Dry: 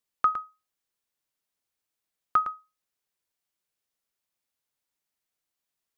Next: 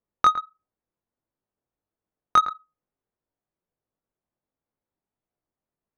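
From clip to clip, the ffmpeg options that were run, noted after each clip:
ffmpeg -i in.wav -filter_complex "[0:a]asplit=2[link_01][link_02];[link_02]acompressor=threshold=-32dB:ratio=6,volume=0.5dB[link_03];[link_01][link_03]amix=inputs=2:normalize=0,flanger=delay=18:depth=4.5:speed=1.5,adynamicsmooth=sensitivity=1.5:basefreq=830,volume=6dB" out.wav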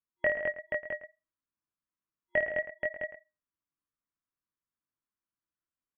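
ffmpeg -i in.wav -af "afftfilt=real='re*between(b*sr/4096,300,2700)':imag='im*between(b*sr/4096,300,2700)':win_size=4096:overlap=0.75,aeval=exprs='val(0)*sin(2*PI*650*n/s)':channel_layout=same,aecho=1:1:53|128|164|210|479|660:0.398|0.224|0.188|0.596|0.562|0.355,volume=-7.5dB" out.wav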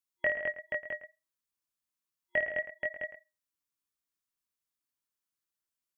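ffmpeg -i in.wav -af "highshelf=frequency=2400:gain=11,volume=-4.5dB" out.wav

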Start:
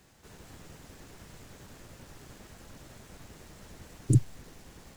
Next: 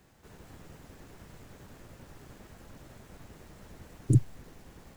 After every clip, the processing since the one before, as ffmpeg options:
ffmpeg -i in.wav -af "equalizer=frequency=6300:width=0.41:gain=-6" out.wav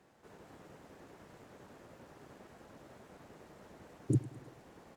ffmpeg -i in.wav -af "bandpass=frequency=590:width_type=q:width=0.57:csg=0,crystalizer=i=2.5:c=0,aecho=1:1:106|212|318|424:0.126|0.0667|0.0354|0.0187" out.wav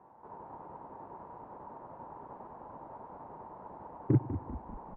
ffmpeg -i in.wav -filter_complex "[0:a]lowpass=frequency=940:width_type=q:width=7.4,aeval=exprs='0.106*(cos(1*acos(clip(val(0)/0.106,-1,1)))-cos(1*PI/2))+0.00299*(cos(7*acos(clip(val(0)/0.106,-1,1)))-cos(7*PI/2))':channel_layout=same,asplit=7[link_01][link_02][link_03][link_04][link_05][link_06][link_07];[link_02]adelay=196,afreqshift=-30,volume=-11dB[link_08];[link_03]adelay=392,afreqshift=-60,volume=-15.9dB[link_09];[link_04]adelay=588,afreqshift=-90,volume=-20.8dB[link_10];[link_05]adelay=784,afreqshift=-120,volume=-25.6dB[link_11];[link_06]adelay=980,afreqshift=-150,volume=-30.5dB[link_12];[link_07]adelay=1176,afreqshift=-180,volume=-35.4dB[link_13];[link_01][link_08][link_09][link_10][link_11][link_12][link_13]amix=inputs=7:normalize=0,volume=3.5dB" out.wav

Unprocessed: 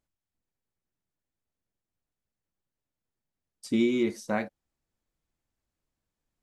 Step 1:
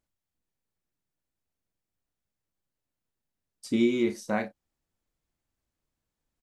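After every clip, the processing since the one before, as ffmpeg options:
ffmpeg -i in.wav -filter_complex "[0:a]asplit=2[link_01][link_02];[link_02]adelay=34,volume=-11dB[link_03];[link_01][link_03]amix=inputs=2:normalize=0" out.wav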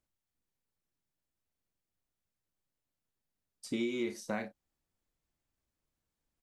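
ffmpeg -i in.wav -filter_complex "[0:a]acrossover=split=360|1900[link_01][link_02][link_03];[link_01]acompressor=threshold=-36dB:ratio=4[link_04];[link_02]acompressor=threshold=-34dB:ratio=4[link_05];[link_03]acompressor=threshold=-41dB:ratio=4[link_06];[link_04][link_05][link_06]amix=inputs=3:normalize=0,volume=-2.5dB" out.wav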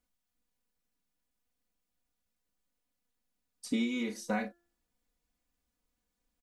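ffmpeg -i in.wav -af "aecho=1:1:4.1:0.98,bandreject=frequency=344.9:width_type=h:width=4,bandreject=frequency=689.8:width_type=h:width=4,bandreject=frequency=1034.7:width_type=h:width=4,bandreject=frequency=1379.6:width_type=h:width=4,bandreject=frequency=1724.5:width_type=h:width=4" out.wav

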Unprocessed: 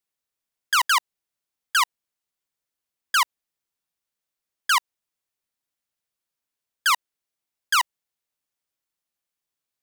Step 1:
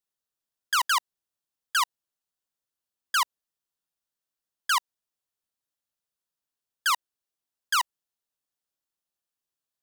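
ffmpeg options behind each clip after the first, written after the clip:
ffmpeg -i in.wav -af "equalizer=frequency=2200:width_type=o:width=0.32:gain=-7.5,volume=-3.5dB" out.wav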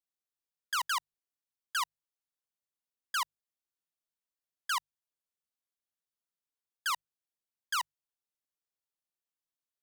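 ffmpeg -i in.wav -af "bandreject=frequency=50:width_type=h:width=6,bandreject=frequency=100:width_type=h:width=6,bandreject=frequency=150:width_type=h:width=6,volume=-8dB" out.wav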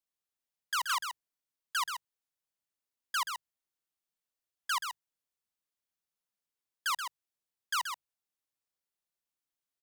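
ffmpeg -i in.wav -af "aecho=1:1:129:0.447" out.wav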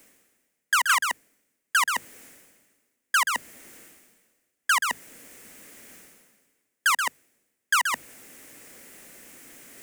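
ffmpeg -i in.wav -af "equalizer=frequency=250:width_type=o:width=1:gain=12,equalizer=frequency=500:width_type=o:width=1:gain=7,equalizer=frequency=1000:width_type=o:width=1:gain=-5,equalizer=frequency=2000:width_type=o:width=1:gain=10,equalizer=frequency=4000:width_type=o:width=1:gain=-8,equalizer=frequency=8000:width_type=o:width=1:gain=5,areverse,acompressor=mode=upward:threshold=-31dB:ratio=2.5,areverse,volume=8.5dB" out.wav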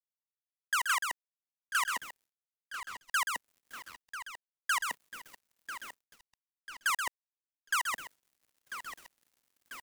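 ffmpeg -i in.wav -filter_complex "[0:a]asplit=2[link_01][link_02];[link_02]adelay=993,lowpass=frequency=4300:poles=1,volume=-11dB,asplit=2[link_03][link_04];[link_04]adelay=993,lowpass=frequency=4300:poles=1,volume=0.54,asplit=2[link_05][link_06];[link_06]adelay=993,lowpass=frequency=4300:poles=1,volume=0.54,asplit=2[link_07][link_08];[link_08]adelay=993,lowpass=frequency=4300:poles=1,volume=0.54,asplit=2[link_09][link_10];[link_10]adelay=993,lowpass=frequency=4300:poles=1,volume=0.54,asplit=2[link_11][link_12];[link_12]adelay=993,lowpass=frequency=4300:poles=1,volume=0.54[link_13];[link_01][link_03][link_05][link_07][link_09][link_11][link_13]amix=inputs=7:normalize=0,acrusher=bits=5:mix=0:aa=0.5,volume=-8.5dB" out.wav

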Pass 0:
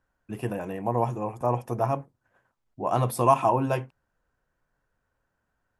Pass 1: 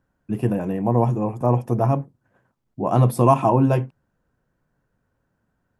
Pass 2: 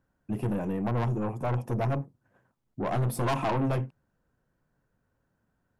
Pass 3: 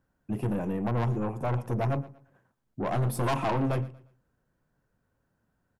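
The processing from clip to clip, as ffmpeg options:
ffmpeg -i in.wav -af "equalizer=frequency=180:width=0.46:gain=12" out.wav
ffmpeg -i in.wav -af "aeval=exprs='(tanh(11.2*val(0)+0.25)-tanh(0.25))/11.2':channel_layout=same,volume=-3dB" out.wav
ffmpeg -i in.wav -af "aecho=1:1:117|234|351:0.112|0.037|0.0122" out.wav

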